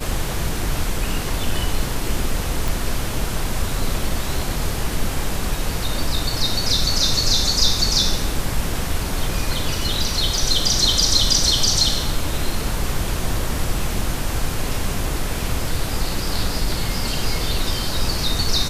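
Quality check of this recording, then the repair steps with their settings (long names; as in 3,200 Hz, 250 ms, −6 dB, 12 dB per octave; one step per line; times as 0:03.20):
0:02.68: click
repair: click removal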